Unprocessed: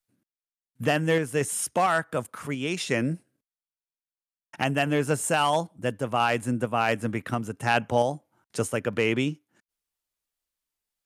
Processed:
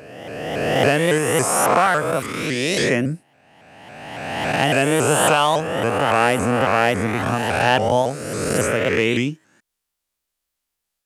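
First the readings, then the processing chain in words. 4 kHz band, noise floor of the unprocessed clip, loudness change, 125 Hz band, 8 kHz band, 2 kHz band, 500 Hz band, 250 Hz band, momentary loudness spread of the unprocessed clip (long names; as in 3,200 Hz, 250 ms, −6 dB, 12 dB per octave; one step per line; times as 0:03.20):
+9.0 dB, below −85 dBFS, +7.5 dB, +6.0 dB, +9.0 dB, +8.5 dB, +8.5 dB, +6.5 dB, 8 LU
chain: peak hold with a rise ahead of every peak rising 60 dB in 1.90 s
pitch modulation by a square or saw wave saw up 3.6 Hz, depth 160 cents
level +3.5 dB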